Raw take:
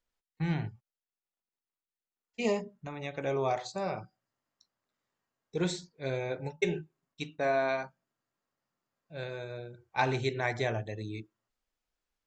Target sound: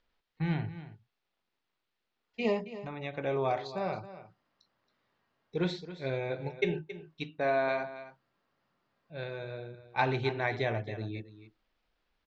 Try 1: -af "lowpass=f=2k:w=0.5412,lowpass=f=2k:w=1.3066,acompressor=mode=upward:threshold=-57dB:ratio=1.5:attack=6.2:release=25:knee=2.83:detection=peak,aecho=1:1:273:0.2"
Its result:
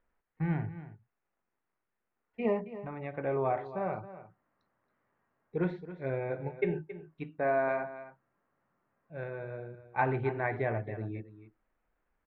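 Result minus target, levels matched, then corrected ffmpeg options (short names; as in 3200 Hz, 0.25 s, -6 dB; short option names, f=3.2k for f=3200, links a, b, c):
4000 Hz band -18.5 dB
-af "lowpass=f=4.4k:w=0.5412,lowpass=f=4.4k:w=1.3066,acompressor=mode=upward:threshold=-57dB:ratio=1.5:attack=6.2:release=25:knee=2.83:detection=peak,aecho=1:1:273:0.2"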